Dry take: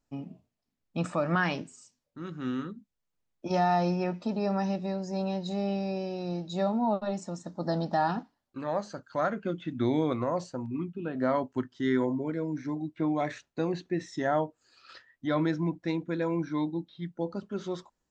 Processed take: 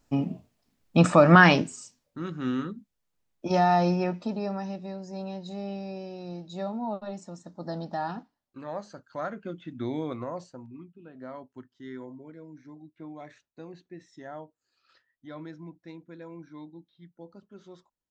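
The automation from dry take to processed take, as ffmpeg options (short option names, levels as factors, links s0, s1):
-af "volume=3.98,afade=t=out:st=1.5:d=0.83:silence=0.375837,afade=t=out:st=3.93:d=0.68:silence=0.375837,afade=t=out:st=10.23:d=0.67:silence=0.354813"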